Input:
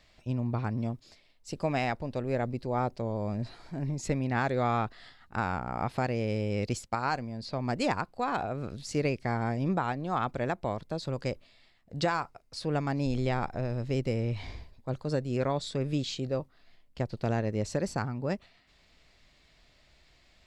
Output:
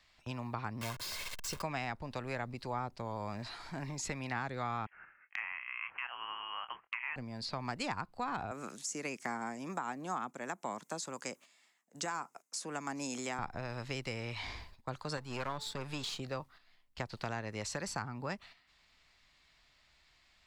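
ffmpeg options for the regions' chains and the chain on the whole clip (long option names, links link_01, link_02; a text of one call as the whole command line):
ffmpeg -i in.wav -filter_complex "[0:a]asettb=1/sr,asplit=3[link_01][link_02][link_03];[link_01]atrim=end=0.814[link_04];[link_02]atrim=start=0.81:end=1.62,asetpts=PTS-STARTPTS,afade=type=in:duration=0.004:curve=qsin,afade=type=out:start_time=0.806:duration=0.004:curve=qsin,aeval=exprs='val(0)+0.5*0.00944*sgn(val(0))':channel_layout=same,acrusher=bits=3:mode=log:mix=0:aa=0.000001,aecho=1:1:1.9:0.49,atrim=end_sample=35721[link_05];[link_03]atrim=start=1.616[link_06];[link_04][link_05]acrossfade=duration=0.004:curve1=hsin:curve2=qsin[link_07];[link_07][link_06]acrossfade=duration=0.004:curve1=qsin:curve2=hsin,asettb=1/sr,asplit=3[link_08][link_09][link_10];[link_08]atrim=end=4.864[link_11];[link_09]atrim=start=4.86:end=7.16,asetpts=PTS-STARTPTS,afade=type=in:duration=0.004:curve=qsin,afade=type=out:start_time=2.296:duration=0.004:curve=qsin,highpass=1200,asplit=2[link_12][link_13];[link_13]adelay=25,volume=-10dB[link_14];[link_12][link_14]amix=inputs=2:normalize=0,atrim=end_sample=101430,lowpass=frequency=2900:width_type=q:width=0.5098,lowpass=frequency=2900:width_type=q:width=0.6013,lowpass=frequency=2900:width_type=q:width=0.9,lowpass=frequency=2900:width_type=q:width=2.563,afreqshift=-3400[link_15];[link_10]atrim=start=7.156[link_16];[link_11][link_15]acrossfade=duration=0.004:curve1=hsin:curve2=qsin[link_17];[link_17][link_16]acrossfade=duration=0.004:curve1=qsin:curve2=hsin,asettb=1/sr,asplit=3[link_18][link_19][link_20];[link_18]atrim=end=8.514[link_21];[link_19]atrim=start=8.51:end=13.39,asetpts=PTS-STARTPTS,afade=type=in:duration=0.004:curve=qsin,afade=type=out:start_time=4.876:duration=0.004:curve=qsin,highpass=frequency=210:width=0.5412,highpass=frequency=210:width=1.3066,highshelf=frequency=5400:width_type=q:width=3:gain=7.5,tremolo=f=1.3:d=0.44[link_22];[link_20]atrim=start=13.386[link_23];[link_21][link_22]acrossfade=duration=0.004:curve1=hsin:curve2=qsin[link_24];[link_24][link_23]acrossfade=duration=0.004:curve1=qsin:curve2=hsin,asettb=1/sr,asplit=3[link_25][link_26][link_27];[link_25]atrim=end=15.174[link_28];[link_26]atrim=start=15.17:end=16.2,asetpts=PTS-STARTPTS,afade=type=in:duration=0.004:curve=qsin,afade=type=out:start_time=1.026:duration=0.004:curve=qsin,aeval=exprs='if(lt(val(0),0),0.447*val(0),val(0))':channel_layout=same,bandreject=frequency=434.4:width_type=h:width=4,bandreject=frequency=868.8:width_type=h:width=4[link_29];[link_27]atrim=start=16.196[link_30];[link_28][link_29]acrossfade=duration=0.004:curve1=hsin:curve2=qsin[link_31];[link_31][link_30]acrossfade=duration=0.004:curve1=qsin:curve2=hsin,agate=range=-9dB:threshold=-51dB:ratio=16:detection=peak,lowshelf=frequency=740:width_type=q:width=1.5:gain=-7,acrossover=split=260|580[link_32][link_33][link_34];[link_32]acompressor=threshold=-50dB:ratio=4[link_35];[link_33]acompressor=threshold=-53dB:ratio=4[link_36];[link_34]acompressor=threshold=-44dB:ratio=4[link_37];[link_35][link_36][link_37]amix=inputs=3:normalize=0,volume=5.5dB" out.wav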